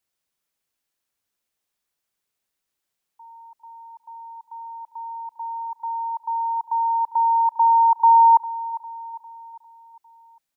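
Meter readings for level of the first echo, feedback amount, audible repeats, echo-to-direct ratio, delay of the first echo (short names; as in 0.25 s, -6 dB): -15.0 dB, 49%, 4, -14.0 dB, 0.402 s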